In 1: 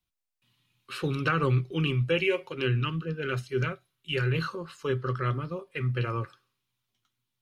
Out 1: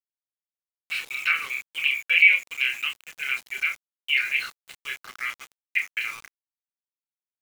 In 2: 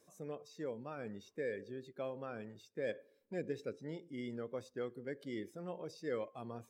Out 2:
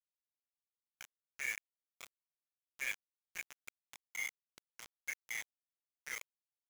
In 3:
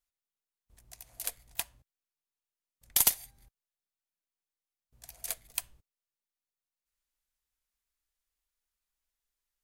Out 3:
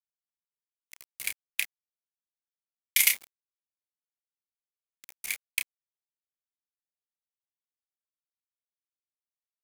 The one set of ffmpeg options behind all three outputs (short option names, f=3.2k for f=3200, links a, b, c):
-filter_complex "[0:a]highpass=f=2.2k:t=q:w=9.3,asplit=2[a][b];[b]adelay=30,volume=-6dB[c];[a][c]amix=inputs=2:normalize=0,aeval=exprs='val(0)*gte(abs(val(0)),0.0141)':c=same"